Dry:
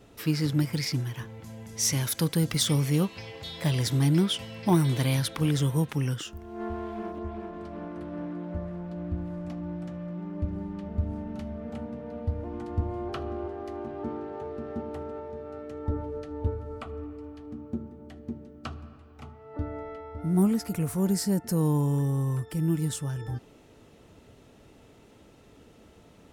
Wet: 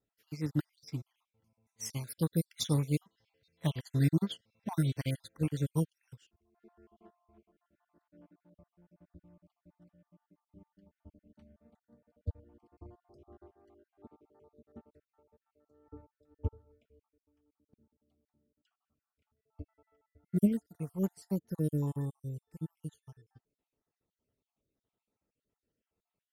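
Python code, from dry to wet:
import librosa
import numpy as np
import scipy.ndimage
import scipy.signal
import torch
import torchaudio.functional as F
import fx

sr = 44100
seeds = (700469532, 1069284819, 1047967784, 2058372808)

y = fx.spec_dropout(x, sr, seeds[0], share_pct=48)
y = fx.upward_expand(y, sr, threshold_db=-41.0, expansion=2.5)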